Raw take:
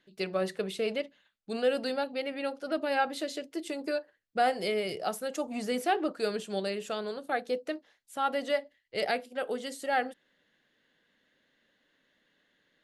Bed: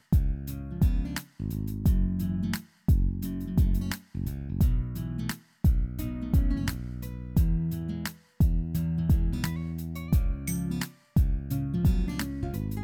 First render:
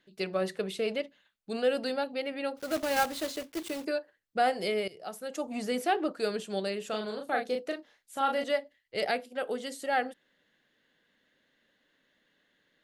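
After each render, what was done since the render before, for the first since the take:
0:02.57–0:03.85: one scale factor per block 3 bits
0:04.88–0:05.50: fade in, from −18.5 dB
0:06.89–0:08.44: double-tracking delay 37 ms −4 dB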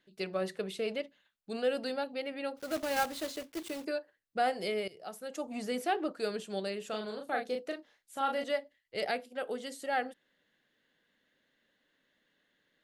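level −3.5 dB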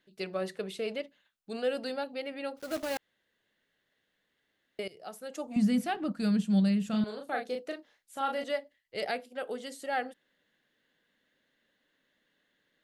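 0:02.97–0:04.79: fill with room tone
0:05.56–0:07.04: low shelf with overshoot 280 Hz +12 dB, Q 3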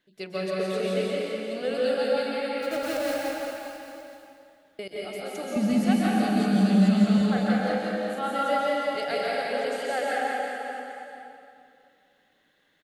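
reverse bouncing-ball delay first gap 170 ms, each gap 1.1×, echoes 5
dense smooth reverb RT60 2.3 s, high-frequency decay 0.75×, pre-delay 115 ms, DRR −4.5 dB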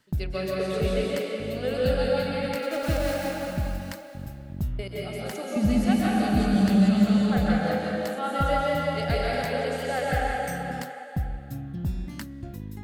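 mix in bed −5.5 dB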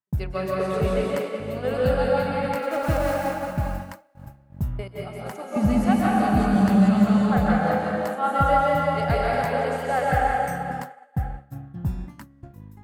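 downward expander −28 dBFS
graphic EQ with 10 bands 125 Hz +5 dB, 1,000 Hz +11 dB, 4,000 Hz −6 dB

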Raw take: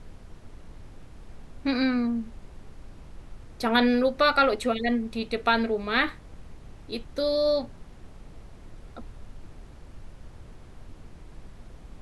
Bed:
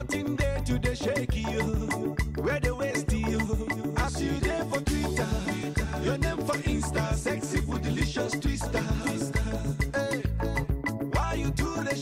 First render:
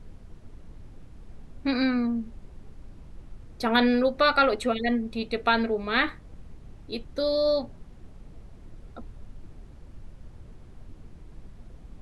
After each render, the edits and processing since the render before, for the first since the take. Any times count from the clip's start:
broadband denoise 6 dB, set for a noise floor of −48 dBFS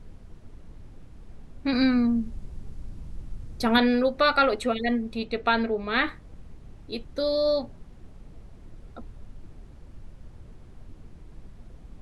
0:01.73–0:03.78: bass and treble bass +7 dB, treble +5 dB
0:05.24–0:06.05: high-frequency loss of the air 56 metres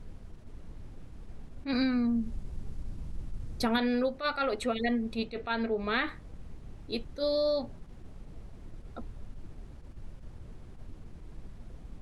downward compressor 6 to 1, threshold −25 dBFS, peak gain reduction 9.5 dB
level that may rise only so fast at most 240 dB per second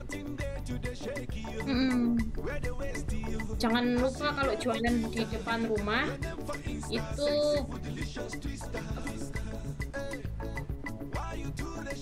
mix in bed −9 dB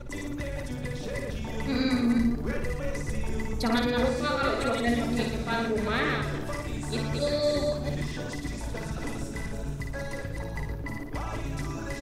delay that plays each chunk backwards 168 ms, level −3.5 dB
loudspeakers that aren't time-aligned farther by 19 metres −5 dB, 40 metres −10 dB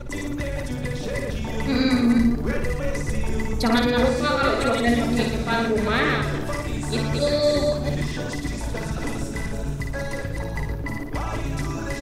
level +6 dB

